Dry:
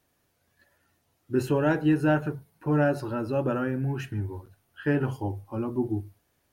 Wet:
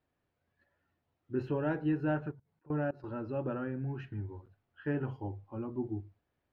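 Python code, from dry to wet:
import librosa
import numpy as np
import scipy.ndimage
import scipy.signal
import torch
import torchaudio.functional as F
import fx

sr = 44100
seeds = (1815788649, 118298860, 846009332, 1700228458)

y = fx.level_steps(x, sr, step_db=23, at=(2.31, 3.04))
y = fx.air_absorb(y, sr, metres=290.0)
y = F.gain(torch.from_numpy(y), -8.0).numpy()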